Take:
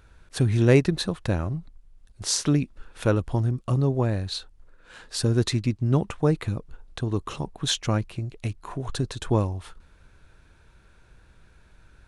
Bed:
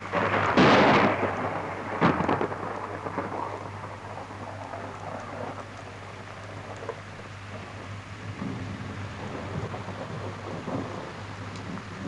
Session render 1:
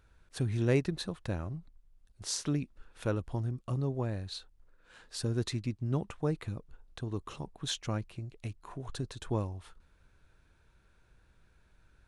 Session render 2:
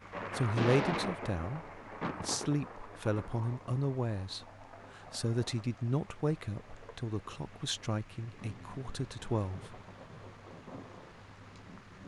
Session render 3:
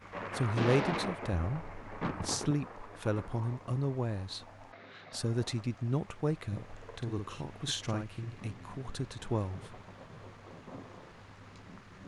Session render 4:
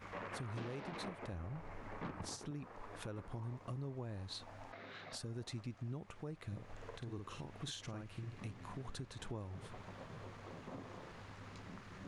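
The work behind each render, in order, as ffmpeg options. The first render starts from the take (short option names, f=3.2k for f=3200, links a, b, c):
-af "volume=-10dB"
-filter_complex "[1:a]volume=-15dB[a];[0:a][a]amix=inputs=2:normalize=0"
-filter_complex "[0:a]asettb=1/sr,asplit=3[a][b][c];[a]atrim=end=1.334[d];[b]atrim=start=1.33:end=2.51,asetpts=PTS-STARTPTS,afade=t=in:d=0.004:c=qsin,afade=t=out:st=1.176:d=0.004:c=qsin,lowshelf=f=120:g=10[e];[c]atrim=start=2.506[f];[d][e]acrossfade=d=0.004:c1=hsin:c2=qsin[g];[g][f]acrossfade=d=0.004:c1=qsin:c2=hsin,asettb=1/sr,asplit=3[h][i][j];[h]atrim=end=4.724[k];[i]atrim=start=4.72:end=5.13,asetpts=PTS-STARTPTS,afade=t=in:d=0.004:c=qsin,afade=t=out:st=0.406:d=0.004:c=qsin,highpass=130,equalizer=f=880:t=q:w=4:g=-8,equalizer=f=2.1k:t=q:w=4:g=8,equalizer=f=3.8k:t=q:w=4:g=8,lowpass=f=5.3k:w=0.5412,lowpass=f=5.3k:w=1.3066[l];[j]atrim=start=5.126[m];[k][l]acrossfade=d=0.004:c1=hsin:c2=qsin[n];[n][m]acrossfade=d=0.004:c1=qsin:c2=hsin,asettb=1/sr,asplit=3[o][p][q];[o]atrim=end=6.474[r];[p]atrim=start=6.47:end=8.4,asetpts=PTS-STARTPTS,afade=t=in:d=0.004:c=qsin,afade=t=out:st=1.926:d=0.004:c=qsin,asplit=2[s][t];[t]adelay=50,volume=-5.5dB[u];[s][u]amix=inputs=2:normalize=0,atrim=end_sample=85113[v];[q]atrim=start=8.396[w];[r][v]acrossfade=d=0.004:c1=hsin:c2=qsin[x];[x][w]acrossfade=d=0.004:c1=qsin:c2=hsin"
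-af "acompressor=threshold=-47dB:ratio=2,alimiter=level_in=10.5dB:limit=-24dB:level=0:latency=1:release=205,volume=-10.5dB"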